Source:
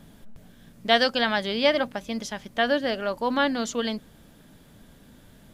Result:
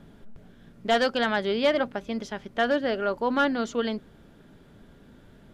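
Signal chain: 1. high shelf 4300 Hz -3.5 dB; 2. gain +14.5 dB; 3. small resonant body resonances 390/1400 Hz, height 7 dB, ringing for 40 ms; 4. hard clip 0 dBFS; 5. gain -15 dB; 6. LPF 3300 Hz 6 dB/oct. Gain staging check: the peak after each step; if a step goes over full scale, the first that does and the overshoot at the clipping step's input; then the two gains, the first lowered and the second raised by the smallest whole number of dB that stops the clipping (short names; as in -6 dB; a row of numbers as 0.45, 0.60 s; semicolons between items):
-5.5, +9.0, +9.5, 0.0, -15.0, -15.0 dBFS; step 2, 9.5 dB; step 2 +4.5 dB, step 5 -5 dB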